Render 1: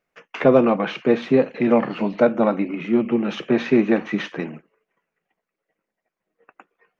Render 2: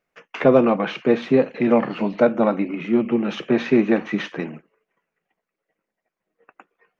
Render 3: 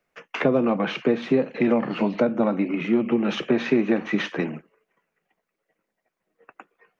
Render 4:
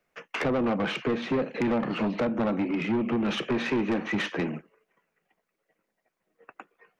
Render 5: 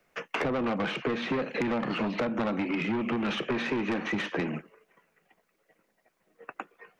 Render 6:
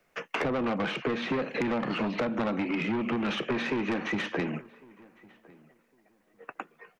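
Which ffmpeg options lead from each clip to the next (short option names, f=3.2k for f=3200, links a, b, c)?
-af anull
-filter_complex "[0:a]acrossover=split=110|320[a][b][c];[a]acompressor=threshold=-51dB:ratio=4[d];[b]acompressor=threshold=-25dB:ratio=4[e];[c]acompressor=threshold=-25dB:ratio=4[f];[d][e][f]amix=inputs=3:normalize=0,volume=2.5dB"
-af "asoftclip=type=tanh:threshold=-21.5dB"
-filter_complex "[0:a]acrossover=split=990|3600[a][b][c];[a]acompressor=threshold=-37dB:ratio=4[d];[b]acompressor=threshold=-42dB:ratio=4[e];[c]acompressor=threshold=-56dB:ratio=4[f];[d][e][f]amix=inputs=3:normalize=0,volume=7dB"
-filter_complex "[0:a]asplit=2[a][b];[b]adelay=1105,lowpass=f=2k:p=1,volume=-24dB,asplit=2[c][d];[d]adelay=1105,lowpass=f=2k:p=1,volume=0.21[e];[a][c][e]amix=inputs=3:normalize=0"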